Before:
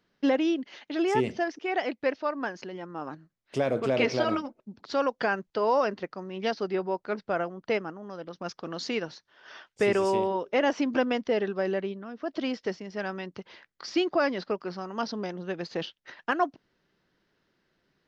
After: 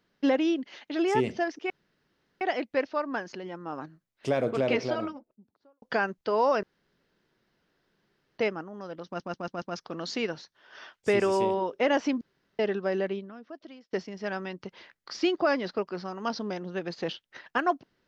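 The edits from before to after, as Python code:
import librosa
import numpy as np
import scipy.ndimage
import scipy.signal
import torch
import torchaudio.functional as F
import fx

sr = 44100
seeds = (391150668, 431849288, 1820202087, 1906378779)

y = fx.studio_fade_out(x, sr, start_s=3.7, length_s=1.41)
y = fx.edit(y, sr, fx.insert_room_tone(at_s=1.7, length_s=0.71),
    fx.room_tone_fill(start_s=5.92, length_s=1.75),
    fx.stutter(start_s=8.35, slice_s=0.14, count=5),
    fx.room_tone_fill(start_s=10.94, length_s=0.38),
    fx.fade_out_to(start_s=11.88, length_s=0.78, curve='qua', floor_db=-23.5), tone=tone)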